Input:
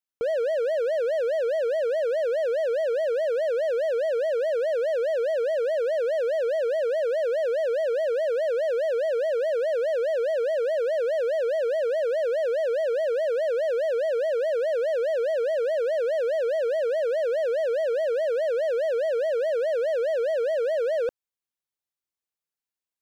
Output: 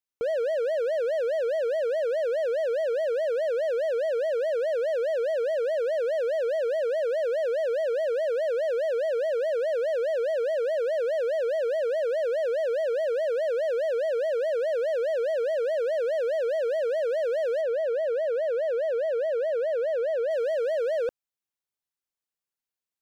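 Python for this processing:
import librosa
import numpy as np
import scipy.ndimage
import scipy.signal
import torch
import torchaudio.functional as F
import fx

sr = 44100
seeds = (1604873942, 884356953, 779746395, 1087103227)

y = fx.high_shelf(x, sr, hz=3100.0, db=-9.0, at=(17.61, 20.31))
y = F.gain(torch.from_numpy(y), -1.5).numpy()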